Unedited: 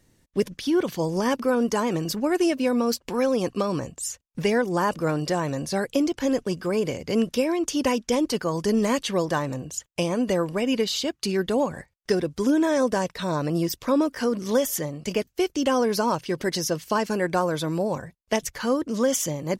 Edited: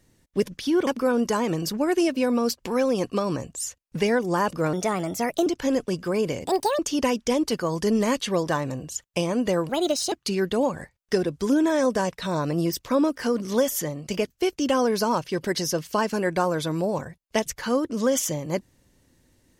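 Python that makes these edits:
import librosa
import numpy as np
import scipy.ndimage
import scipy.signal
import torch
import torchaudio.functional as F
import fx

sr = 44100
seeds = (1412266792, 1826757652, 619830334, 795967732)

y = fx.edit(x, sr, fx.cut(start_s=0.87, length_s=0.43),
    fx.speed_span(start_s=5.16, length_s=0.89, speed=1.21),
    fx.speed_span(start_s=7.03, length_s=0.58, speed=1.68),
    fx.speed_span(start_s=10.51, length_s=0.58, speed=1.35), tone=tone)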